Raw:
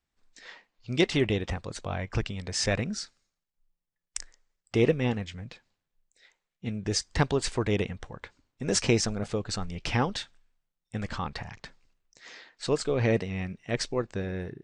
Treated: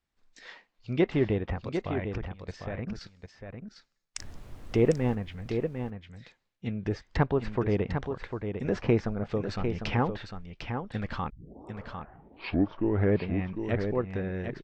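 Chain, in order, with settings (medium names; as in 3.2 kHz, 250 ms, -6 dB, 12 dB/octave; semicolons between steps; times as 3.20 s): low-pass that closes with the level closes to 1.6 kHz, closed at -26 dBFS; Bessel low-pass 6.2 kHz; 1.69–3.01 s: level held to a coarse grid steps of 17 dB; 4.18–5.14 s: added noise brown -42 dBFS; 11.30 s: tape start 2.01 s; delay 751 ms -7 dB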